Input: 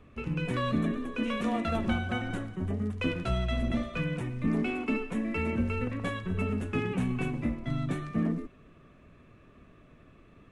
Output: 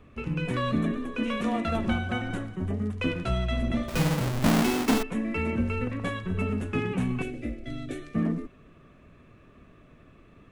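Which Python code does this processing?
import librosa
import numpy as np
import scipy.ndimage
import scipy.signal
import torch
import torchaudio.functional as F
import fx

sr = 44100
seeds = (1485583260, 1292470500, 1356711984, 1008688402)

y = fx.halfwave_hold(x, sr, at=(3.88, 5.03))
y = fx.fixed_phaser(y, sr, hz=410.0, stages=4, at=(7.22, 8.15))
y = y * 10.0 ** (2.0 / 20.0)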